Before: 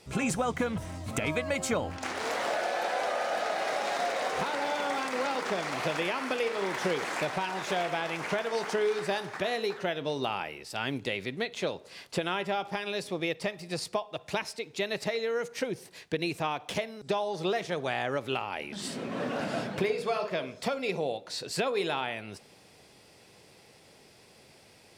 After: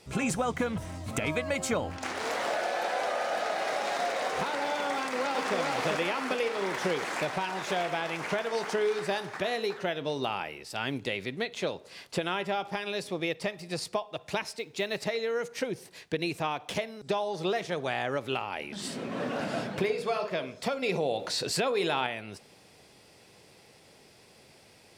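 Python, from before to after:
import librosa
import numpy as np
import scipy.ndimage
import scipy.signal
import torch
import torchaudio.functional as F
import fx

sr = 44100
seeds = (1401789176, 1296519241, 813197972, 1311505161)

y = fx.echo_throw(x, sr, start_s=4.94, length_s=0.61, ms=400, feedback_pct=50, wet_db=-2.5)
y = fx.quant_float(y, sr, bits=4, at=(14.52, 14.99))
y = fx.env_flatten(y, sr, amount_pct=50, at=(20.82, 22.07))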